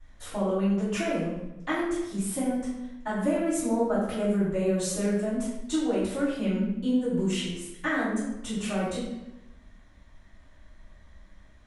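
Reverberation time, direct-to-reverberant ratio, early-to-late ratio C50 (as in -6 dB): 0.95 s, -17.0 dB, 0.0 dB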